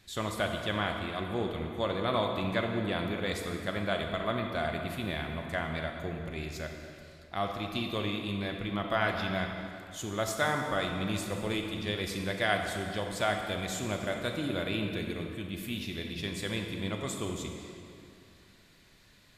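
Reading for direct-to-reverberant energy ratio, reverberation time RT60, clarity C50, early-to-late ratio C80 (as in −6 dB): 3.0 dB, 2.8 s, 4.0 dB, 5.0 dB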